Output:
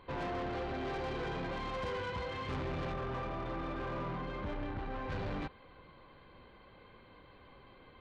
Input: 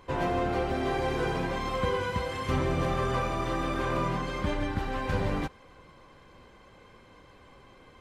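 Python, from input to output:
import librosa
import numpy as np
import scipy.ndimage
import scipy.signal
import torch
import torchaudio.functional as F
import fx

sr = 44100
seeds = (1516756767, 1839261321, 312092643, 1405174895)

y = fx.brickwall_lowpass(x, sr, high_hz=4700.0)
y = 10.0 ** (-31.0 / 20.0) * np.tanh(y / 10.0 ** (-31.0 / 20.0))
y = fx.high_shelf(y, sr, hz=2900.0, db=-10.5, at=(2.92, 5.1))
y = F.gain(torch.from_numpy(y), -3.5).numpy()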